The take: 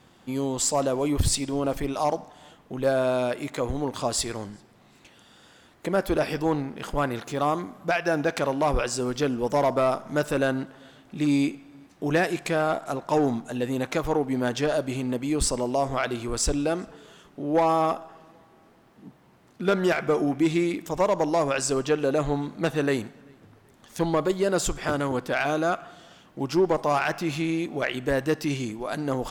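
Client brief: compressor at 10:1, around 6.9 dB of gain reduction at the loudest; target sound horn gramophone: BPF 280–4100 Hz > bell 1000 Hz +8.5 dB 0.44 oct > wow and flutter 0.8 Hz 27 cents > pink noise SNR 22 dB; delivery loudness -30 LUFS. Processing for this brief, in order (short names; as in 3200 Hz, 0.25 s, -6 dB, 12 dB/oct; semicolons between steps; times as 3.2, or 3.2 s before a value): compressor 10:1, threshold -24 dBFS; BPF 280–4100 Hz; bell 1000 Hz +8.5 dB 0.44 oct; wow and flutter 0.8 Hz 27 cents; pink noise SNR 22 dB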